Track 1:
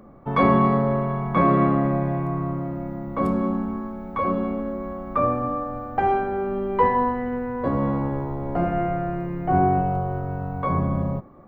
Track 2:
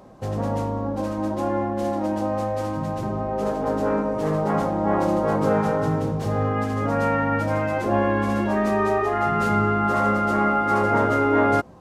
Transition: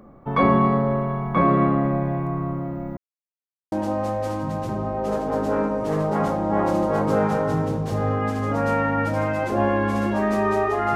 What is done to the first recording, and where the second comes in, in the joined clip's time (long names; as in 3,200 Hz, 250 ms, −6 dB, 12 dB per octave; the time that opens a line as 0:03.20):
track 1
0:02.97–0:03.72: silence
0:03.72: continue with track 2 from 0:02.06